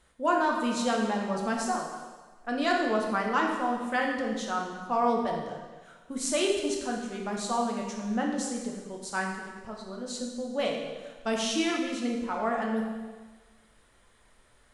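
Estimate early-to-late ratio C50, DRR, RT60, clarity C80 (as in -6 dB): 3.0 dB, -1.0 dB, 1.4 s, 5.0 dB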